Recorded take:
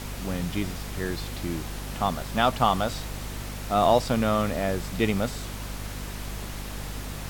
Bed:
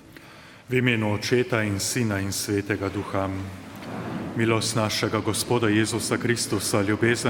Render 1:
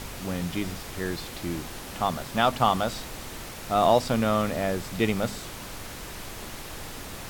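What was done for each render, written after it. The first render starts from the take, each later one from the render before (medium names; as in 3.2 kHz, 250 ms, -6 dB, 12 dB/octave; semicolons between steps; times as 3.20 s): de-hum 50 Hz, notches 5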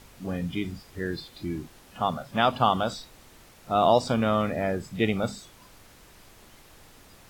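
noise print and reduce 14 dB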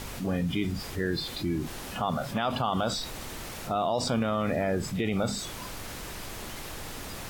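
peak limiter -19.5 dBFS, peak gain reduction 11 dB; level flattener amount 50%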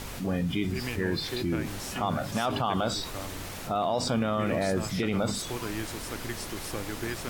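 add bed -14 dB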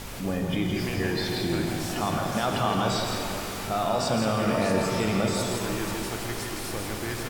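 delay 166 ms -5 dB; pitch-shifted reverb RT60 3.5 s, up +12 st, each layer -8 dB, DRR 3.5 dB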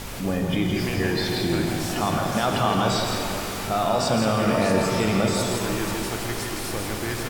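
trim +3.5 dB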